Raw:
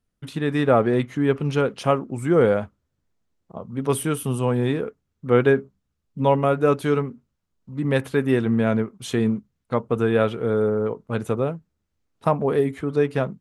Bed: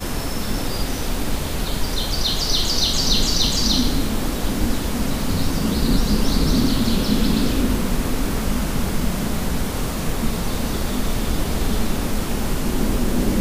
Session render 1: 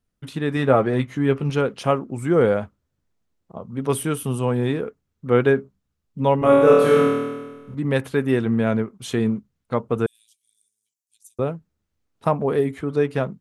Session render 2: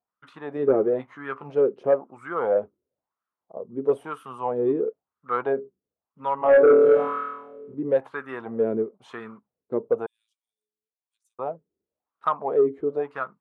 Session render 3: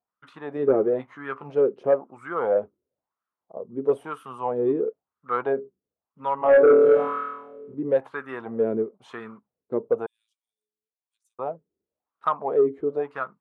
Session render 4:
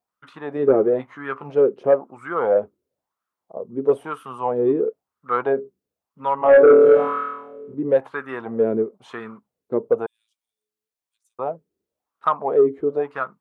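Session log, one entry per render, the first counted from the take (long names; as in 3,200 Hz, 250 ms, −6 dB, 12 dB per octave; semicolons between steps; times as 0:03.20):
0:00.55–0:01.50: double-tracking delay 15 ms −9 dB; 0:06.39–0:07.75: flutter between parallel walls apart 4.3 metres, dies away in 1.3 s; 0:10.06–0:11.39: inverse Chebyshev high-pass filter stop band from 1,400 Hz, stop band 70 dB
LFO wah 1 Hz 370–1,300 Hz, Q 4.8; sine wavefolder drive 3 dB, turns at −11 dBFS
no processing that can be heard
level +4 dB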